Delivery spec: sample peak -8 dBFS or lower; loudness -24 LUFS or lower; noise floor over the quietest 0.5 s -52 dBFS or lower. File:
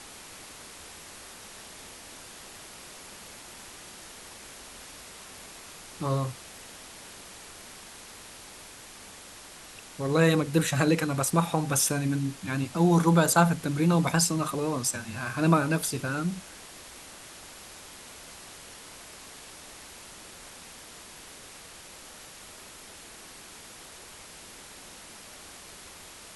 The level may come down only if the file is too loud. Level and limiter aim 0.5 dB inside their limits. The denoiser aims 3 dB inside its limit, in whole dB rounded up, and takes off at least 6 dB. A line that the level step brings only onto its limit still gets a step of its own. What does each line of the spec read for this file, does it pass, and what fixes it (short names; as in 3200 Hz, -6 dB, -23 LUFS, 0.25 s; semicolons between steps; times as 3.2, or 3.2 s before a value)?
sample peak -7.5 dBFS: fail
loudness -25.5 LUFS: OK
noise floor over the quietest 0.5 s -47 dBFS: fail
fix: denoiser 8 dB, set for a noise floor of -47 dBFS; limiter -8.5 dBFS